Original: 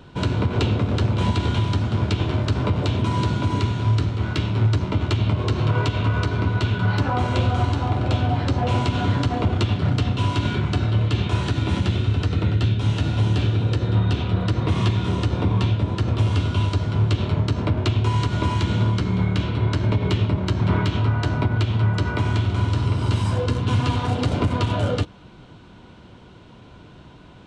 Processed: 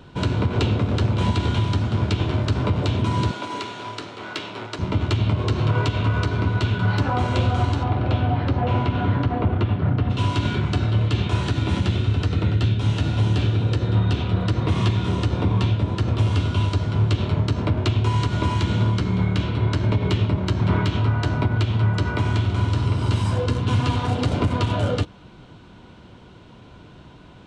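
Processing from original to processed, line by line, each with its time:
3.31–4.79 HPF 430 Hz
7.83–10.09 LPF 3600 Hz -> 1700 Hz

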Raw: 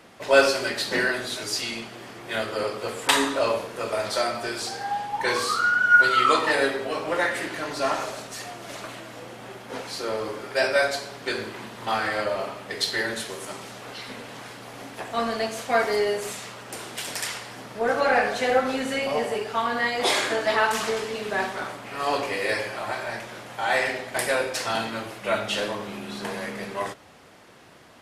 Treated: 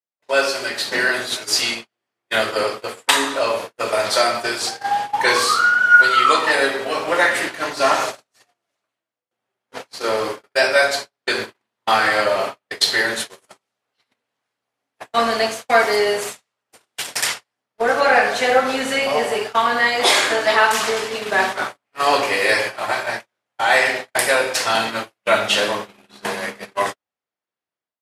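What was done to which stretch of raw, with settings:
8.6–9.31 fade out, to -17.5 dB
whole clip: gate -31 dBFS, range -49 dB; low shelf 370 Hz -9 dB; AGC gain up to 11 dB

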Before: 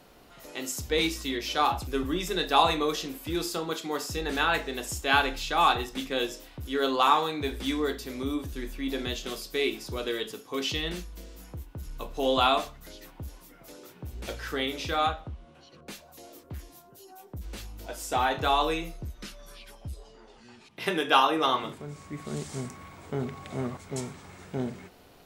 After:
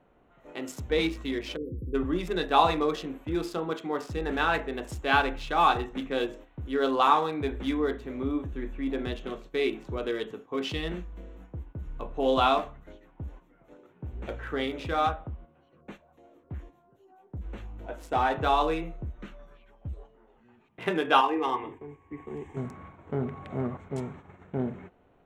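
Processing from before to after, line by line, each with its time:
1.56–1.94 spectral delete 530–10000 Hz
8.87–9.46 high shelf 7500 Hz -7.5 dB
21.21–22.57 fixed phaser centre 910 Hz, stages 8
whole clip: Wiener smoothing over 9 samples; high shelf 3500 Hz -11 dB; gate -47 dBFS, range -8 dB; gain +1.5 dB

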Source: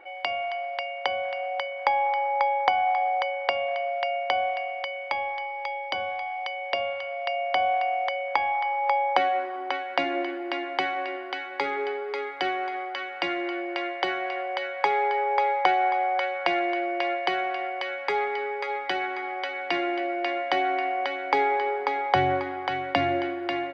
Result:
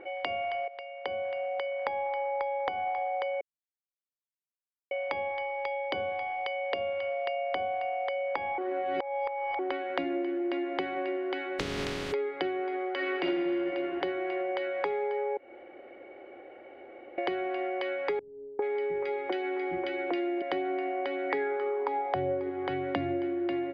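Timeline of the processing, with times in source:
0.68–2.23 fade in, from -15 dB
3.41–4.91 mute
8.58–9.59 reverse
11.58–12.12 spectral contrast lowered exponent 0.11
12.96–13.63 reverb throw, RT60 2.1 s, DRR -9 dB
15.37–17.18 room tone
18.19–20.42 three bands offset in time lows, mids, highs 0.4/0.43 s, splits 230/1400 Hz
21.29–22.49 bell 2000 Hz -> 430 Hz +14.5 dB 0.35 oct
whole clip: LPF 3600 Hz 12 dB/oct; resonant low shelf 590 Hz +9 dB, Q 1.5; compressor, threshold -29 dBFS

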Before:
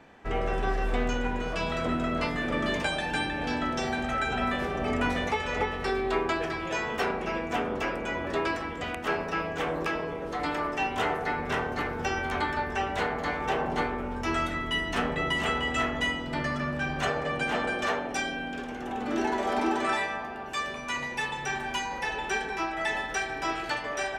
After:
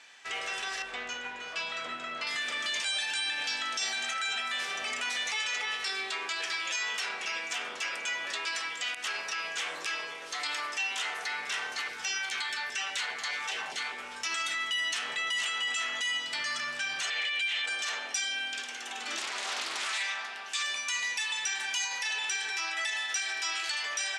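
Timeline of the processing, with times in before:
0.82–2.27 LPF 1300 Hz 6 dB/oct
11.88–13.98 LFO notch saw down 4.9 Hz 210–1600 Hz
17.1–17.66 band shelf 2700 Hz +12.5 dB 1.3 oct
19.18–20.63 Doppler distortion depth 0.62 ms
whole clip: weighting filter ITU-R 468; limiter -23 dBFS; tilt shelf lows -7 dB, about 1400 Hz; gain -3.5 dB

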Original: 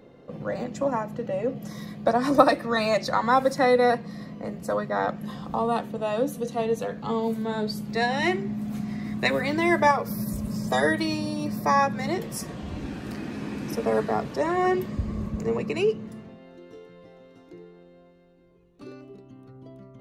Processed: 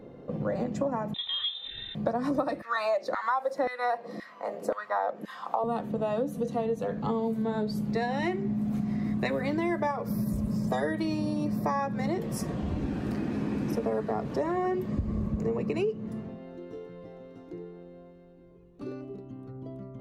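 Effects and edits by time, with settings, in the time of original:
1.14–1.95 inverted band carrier 3800 Hz
2.62–5.64 LFO high-pass saw down 1.9 Hz 330–1900 Hz
whole clip: tilt shelf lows +5 dB, about 1300 Hz; compressor 6:1, threshold -26 dBFS

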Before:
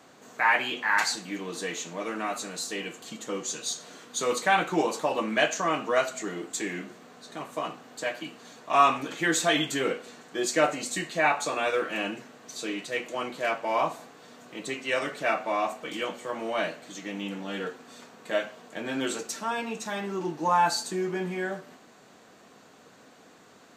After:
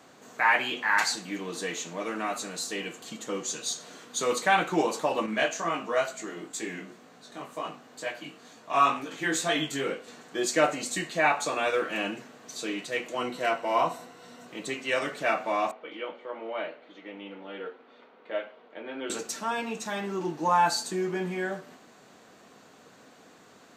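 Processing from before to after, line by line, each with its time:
5.26–10.08 chorus 2.1 Hz, delay 17.5 ms, depth 4.6 ms
13.17–14.47 ripple EQ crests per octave 2, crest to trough 8 dB
15.71–19.1 speaker cabinet 420–2800 Hz, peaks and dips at 710 Hz -6 dB, 1100 Hz -6 dB, 1700 Hz -9 dB, 2600 Hz -6 dB

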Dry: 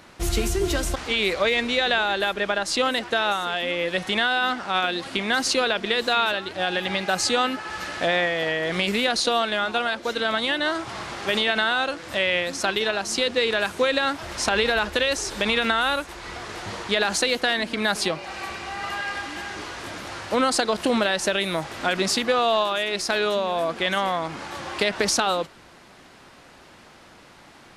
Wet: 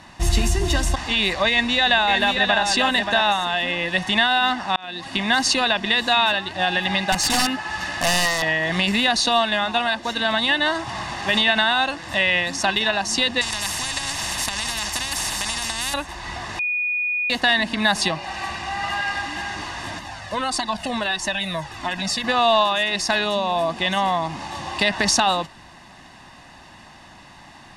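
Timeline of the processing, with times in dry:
1.49–2.63 echo throw 0.58 s, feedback 15%, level -5 dB
4.76–5.2 fade in
7.12–8.42 wrapped overs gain 16 dB
13.41–15.94 spectral compressor 10:1
16.59–17.3 bleep 2460 Hz -22 dBFS
19.99–22.24 cascading flanger falling 1.6 Hz
23.24–24.82 bell 1600 Hz -5.5 dB
whole clip: LPF 10000 Hz 12 dB/oct; comb 1.1 ms, depth 68%; gain +2.5 dB

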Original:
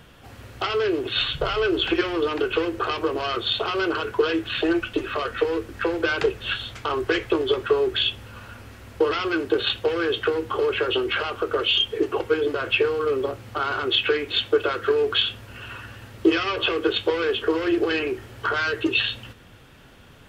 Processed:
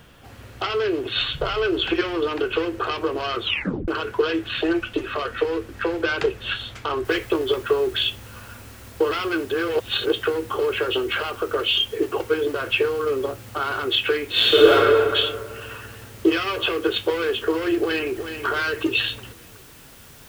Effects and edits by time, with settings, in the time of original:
3.43 tape stop 0.45 s
7.05 noise floor step -67 dB -49 dB
9.51–10.13 reverse
14.31–14.73 reverb throw, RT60 1.9 s, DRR -10 dB
17.78–18.45 echo throw 0.37 s, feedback 45%, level -8.5 dB

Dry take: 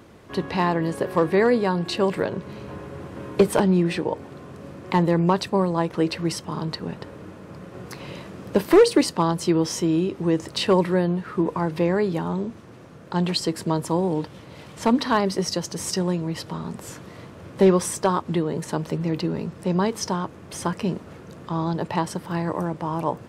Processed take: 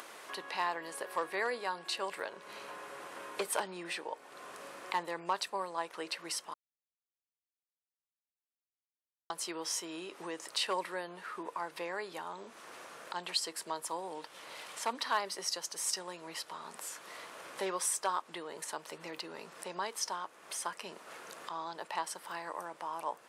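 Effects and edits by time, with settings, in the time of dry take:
6.54–9.3 mute
whole clip: HPF 850 Hz 12 dB/oct; bell 10000 Hz +6 dB 0.78 oct; upward compressor, threshold -30 dBFS; gain -7.5 dB

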